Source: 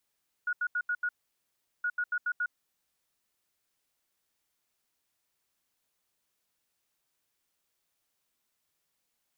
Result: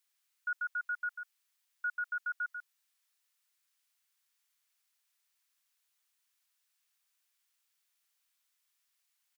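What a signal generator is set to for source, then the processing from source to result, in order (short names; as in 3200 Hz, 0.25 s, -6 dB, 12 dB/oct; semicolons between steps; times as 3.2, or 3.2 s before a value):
beep pattern sine 1450 Hz, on 0.06 s, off 0.08 s, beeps 5, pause 0.75 s, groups 2, -27 dBFS
HPF 1300 Hz 12 dB/oct; echo 0.143 s -8.5 dB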